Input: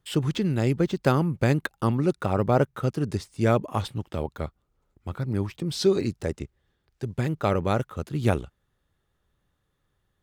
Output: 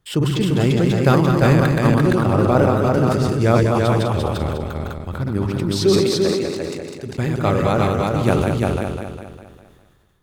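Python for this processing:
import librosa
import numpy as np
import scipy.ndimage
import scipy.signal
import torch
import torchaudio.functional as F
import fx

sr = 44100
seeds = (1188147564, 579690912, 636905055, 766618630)

p1 = fx.reverse_delay_fb(x, sr, ms=101, feedback_pct=63, wet_db=-3.5)
p2 = fx.highpass(p1, sr, hz=280.0, slope=6, at=(5.97, 7.16))
p3 = p2 + fx.echo_single(p2, sr, ms=344, db=-3.5, dry=0)
p4 = fx.sustainer(p3, sr, db_per_s=30.0)
y = p4 * 10.0 ** (3.5 / 20.0)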